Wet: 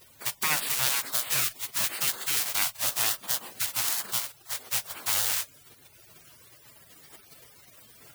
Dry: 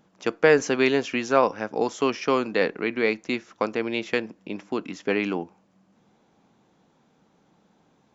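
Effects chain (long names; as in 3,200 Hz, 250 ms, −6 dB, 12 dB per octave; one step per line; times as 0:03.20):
spike at every zero crossing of −12 dBFS
camcorder AGC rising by 7.2 dB per second
gate on every frequency bin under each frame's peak −20 dB weak
level +1 dB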